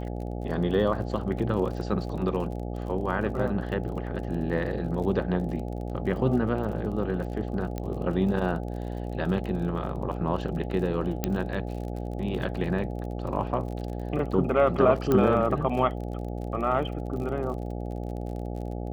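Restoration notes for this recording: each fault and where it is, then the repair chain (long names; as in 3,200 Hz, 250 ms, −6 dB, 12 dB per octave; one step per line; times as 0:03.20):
mains buzz 60 Hz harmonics 14 −33 dBFS
surface crackle 38 per second −36 dBFS
0:07.78: click −19 dBFS
0:11.24: click −11 dBFS
0:15.12: click −12 dBFS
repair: click removal
hum removal 60 Hz, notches 14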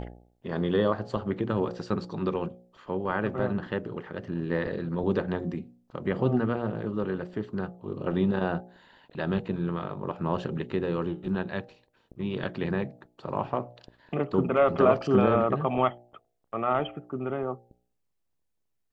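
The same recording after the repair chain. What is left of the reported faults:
0:07.78: click
0:15.12: click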